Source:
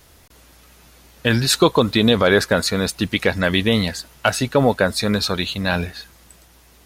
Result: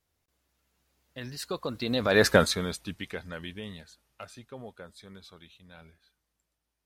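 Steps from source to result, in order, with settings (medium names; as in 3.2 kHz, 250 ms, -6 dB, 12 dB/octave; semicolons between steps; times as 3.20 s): Doppler pass-by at 2.32 s, 24 m/s, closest 2.4 m; trim -1 dB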